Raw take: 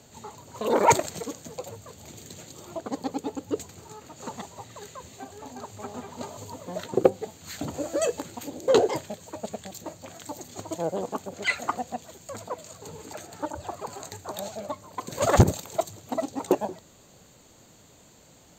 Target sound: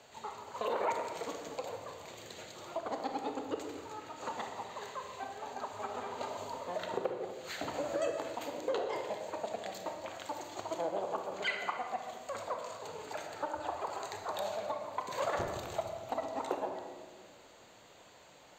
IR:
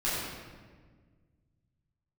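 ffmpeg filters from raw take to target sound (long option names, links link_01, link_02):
-filter_complex "[0:a]acrossover=split=450 4100:gain=0.158 1 0.224[link_01][link_02][link_03];[link_01][link_02][link_03]amix=inputs=3:normalize=0,acompressor=threshold=-34dB:ratio=5,asplit=2[link_04][link_05];[1:a]atrim=start_sample=2205,adelay=30[link_06];[link_05][link_06]afir=irnorm=-1:irlink=0,volume=-13dB[link_07];[link_04][link_07]amix=inputs=2:normalize=0,volume=1dB"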